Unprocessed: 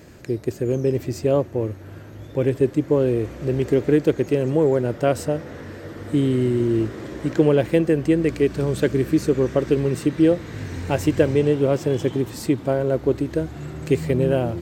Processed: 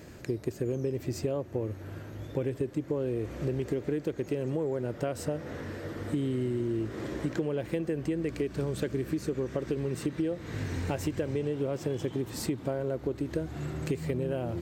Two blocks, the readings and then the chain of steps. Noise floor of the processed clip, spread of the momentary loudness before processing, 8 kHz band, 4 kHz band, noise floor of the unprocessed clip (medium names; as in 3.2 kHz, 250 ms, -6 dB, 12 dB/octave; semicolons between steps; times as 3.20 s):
-46 dBFS, 10 LU, -6.5 dB, -8.5 dB, -40 dBFS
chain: in parallel at -1 dB: peak limiter -12 dBFS, peak gain reduction 8 dB; on the sum: compression 10:1, threshold -19 dBFS, peak gain reduction 12 dB; trim -8 dB